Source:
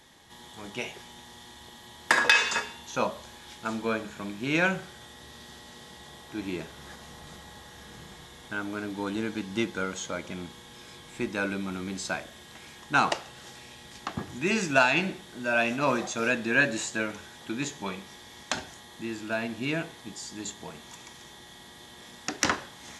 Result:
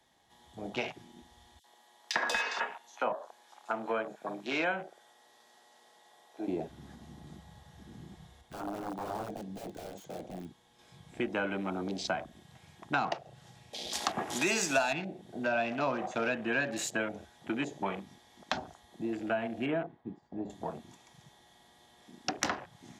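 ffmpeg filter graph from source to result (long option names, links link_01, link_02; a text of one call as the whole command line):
ffmpeg -i in.wav -filter_complex "[0:a]asettb=1/sr,asplit=3[link_01][link_02][link_03];[link_01]atrim=end=1.594[link_04];[link_02]atrim=start=1.59:end=6.48,asetpts=PTS-STARTPTS,afade=type=in:duration=0.004:curve=qsin,afade=type=out:start_time=4.886:duration=0.004:curve=qsin,highpass=410,asoftclip=type=hard:threshold=-13.5dB,acrossover=split=3200[link_05][link_06];[link_05]adelay=50[link_07];[link_07][link_06]amix=inputs=2:normalize=0,atrim=end_sample=215649[link_08];[link_03]atrim=start=6.476[link_09];[link_04][link_08]acrossfade=duration=0.004:curve1=hsin:curve2=qsin[link_10];[link_10][link_09]acrossfade=duration=0.004:curve1=qsin:curve2=hsin,asettb=1/sr,asplit=3[link_11][link_12][link_13];[link_11]atrim=end=8.414[link_14];[link_12]atrim=start=8.41:end=10.79,asetpts=PTS-STARTPTS,afade=type=in:duration=0.004:curve=qsin,afade=type=out:start_time=2.376:duration=0.004:curve=qsin,flanger=delay=5.7:depth=2.2:regen=-78:speed=1.7:shape=sinusoidal,aeval=exprs='(mod(47.3*val(0)+1,2)-1)/47.3':channel_layout=same[link_15];[link_13]atrim=start=10.786[link_16];[link_14][link_15]acrossfade=duration=0.004:curve1=hsin:curve2=qsin[link_17];[link_17][link_16]acrossfade=duration=0.004:curve1=qsin:curve2=hsin,asettb=1/sr,asplit=3[link_18][link_19][link_20];[link_18]atrim=end=13.734[link_21];[link_19]atrim=start=13.73:end=14.93,asetpts=PTS-STARTPTS,afade=type=in:duration=0.004:curve=qsin,afade=type=out:start_time=1.196:duration=0.004:curve=qsin,bass=frequency=250:gain=-10,treble=frequency=4000:gain=9,acontrast=89[link_22];[link_20]atrim=start=14.926[link_23];[link_21][link_22]acrossfade=duration=0.004:curve1=hsin:curve2=qsin[link_24];[link_24][link_23]acrossfade=duration=0.004:curve1=qsin:curve2=hsin,asettb=1/sr,asplit=3[link_25][link_26][link_27];[link_25]atrim=end=19.664[link_28];[link_26]atrim=start=19.66:end=20.5,asetpts=PTS-STARTPTS,afade=type=in:duration=0.004:curve=qsin,afade=type=out:start_time=0.836:duration=0.004:curve=qsin,lowpass=1500,agate=range=-33dB:threshold=-48dB:ratio=3:release=100:detection=peak[link_29];[link_27]atrim=start=20.496[link_30];[link_28][link_29]acrossfade=duration=0.004:curve1=hsin:curve2=qsin[link_31];[link_31][link_30]acrossfade=duration=0.004:curve1=qsin:curve2=hsin,afwtdn=0.0112,equalizer=frequency=720:width=2.7:gain=8.5,acrossover=split=120|250[link_32][link_33][link_34];[link_32]acompressor=threshold=-60dB:ratio=4[link_35];[link_33]acompressor=threshold=-47dB:ratio=4[link_36];[link_34]acompressor=threshold=-33dB:ratio=4[link_37];[link_35][link_36][link_37]amix=inputs=3:normalize=0,volume=2.5dB" out.wav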